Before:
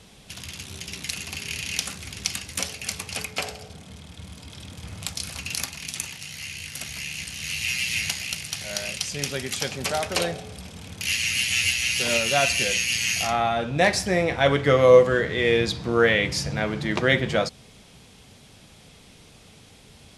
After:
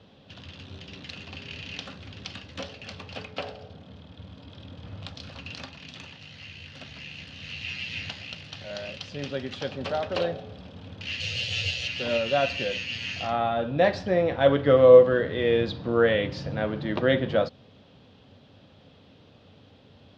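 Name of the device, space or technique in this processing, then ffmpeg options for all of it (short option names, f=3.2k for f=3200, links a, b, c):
guitar cabinet: -filter_complex "[0:a]highpass=83,equalizer=f=95:t=q:w=4:g=7,equalizer=f=270:t=q:w=4:g=6,equalizer=f=550:t=q:w=4:g=7,equalizer=f=2.2k:t=q:w=4:g=-9,lowpass=f=3.8k:w=0.5412,lowpass=f=3.8k:w=1.3066,asettb=1/sr,asplit=3[a][b][c];[a]atrim=end=11.204[d];[b]atrim=start=11.2:end=11.88,asetpts=PTS-STARTPTS,afade=t=in:d=0.004:c=qsin,afade=t=out:st=0.676:d=0.004:c=qsin,equalizer=f=125:t=o:w=1:g=10,equalizer=f=250:t=o:w=1:g=-11,equalizer=f=500:t=o:w=1:g=12,equalizer=f=1k:t=o:w=1:g=-4,equalizer=f=2k:t=o:w=1:g=-4,equalizer=f=4k:t=o:w=1:g=5,equalizer=f=8k:t=o:w=1:g=9[e];[c]atrim=start=11.876[f];[d][e]acrossfade=d=0.004:c1=hsin:c2=qsin[g];[g][f]acrossfade=d=0.004:c1=qsin:c2=hsin,volume=-4dB"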